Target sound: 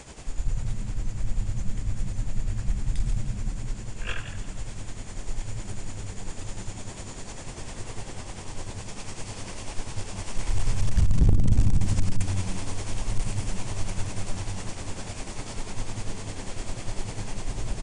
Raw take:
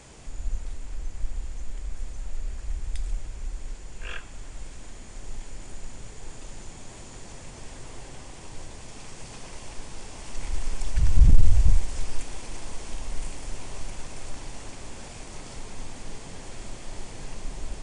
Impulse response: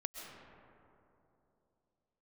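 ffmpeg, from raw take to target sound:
-filter_complex "[0:a]tremolo=f=10:d=0.62,asoftclip=type=hard:threshold=-21dB,asplit=4[a][b][c][d];[b]adelay=165,afreqshift=90,volume=-11dB[e];[c]adelay=330,afreqshift=180,volume=-21.2dB[f];[d]adelay=495,afreqshift=270,volume=-31.3dB[g];[a][e][f][g]amix=inputs=4:normalize=0,volume=6.5dB"

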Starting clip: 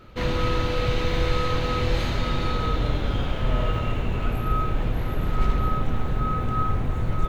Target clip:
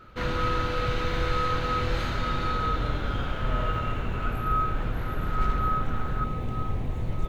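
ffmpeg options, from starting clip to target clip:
-af "asetnsamples=n=441:p=0,asendcmd='6.24 equalizer g -7',equalizer=f=1.4k:t=o:w=0.53:g=9,volume=-4.5dB"

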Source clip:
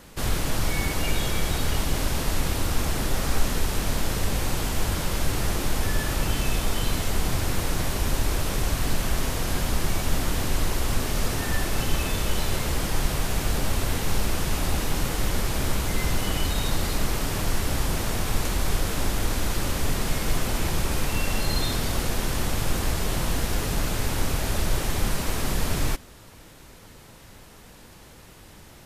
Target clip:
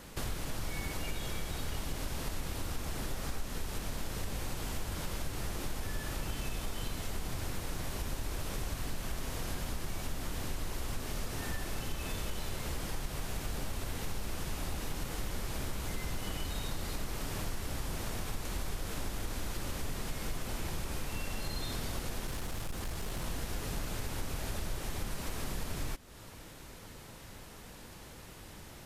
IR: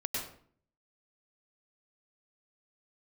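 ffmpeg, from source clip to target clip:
-filter_complex "[0:a]acompressor=threshold=-34dB:ratio=3,asettb=1/sr,asplit=3[a][b][c];[a]atrim=end=22.274[d];[b]atrim=start=22.27:end=23.24,asetpts=PTS-STARTPTS,afade=t=in:d=0.004:c=qsin,afade=t=out:st=0.966:d=0.004:c=qsin,asoftclip=type=hard:threshold=-30.5dB[e];[c]atrim=start=23.236[f];[d][e]acrossfade=d=0.004:c1=hsin:c2=qsin[g];[g][f]acrossfade=d=0.004:c1=qsin:c2=hsin,volume=-2dB"

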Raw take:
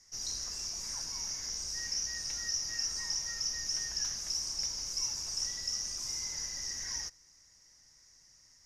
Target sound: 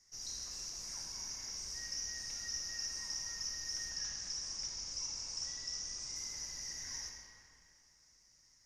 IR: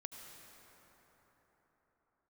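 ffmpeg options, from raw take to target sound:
-filter_complex "[0:a]asettb=1/sr,asplit=3[a][b][c];[a]atrim=end=3.904[d];[b]atrim=start=3.9:end=6.16,asetpts=PTS-STARTPTS,afade=t=in:d=0.004:c=qsin,afade=t=out:st=2.256:d=0.004:c=qsin,lowpass=f=8.2k:w=0.5412,lowpass=f=8.2k:w=1.3066[e];[c]atrim=start=6.156[f];[d][e]acrossfade=d=0.004:c1=hsin:c2=qsin[g];[g][f]acrossfade=d=0.004:c1=qsin:c2=hsin[h];[1:a]atrim=start_sample=2205,asetrate=83790,aresample=44100[i];[h][i]afir=irnorm=-1:irlink=0,volume=4.5dB"

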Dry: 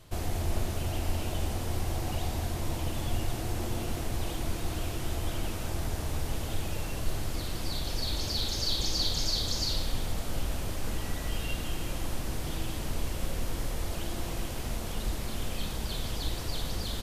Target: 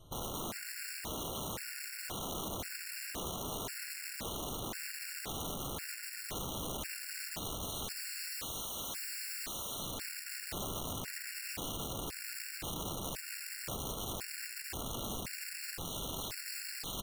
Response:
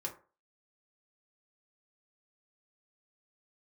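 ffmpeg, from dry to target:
-af "aeval=exprs='(mod(33.5*val(0)+1,2)-1)/33.5':c=same,afftfilt=real='re*gt(sin(2*PI*0.95*pts/sr)*(1-2*mod(floor(b*sr/1024/1400),2)),0)':imag='im*gt(sin(2*PI*0.95*pts/sr)*(1-2*mod(floor(b*sr/1024/1400),2)),0)':win_size=1024:overlap=0.75,volume=-3dB"

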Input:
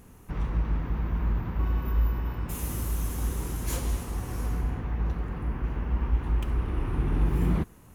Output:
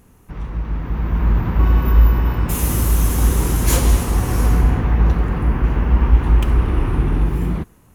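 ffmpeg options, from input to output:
-af "dynaudnorm=f=200:g=11:m=14.5dB,volume=1dB"

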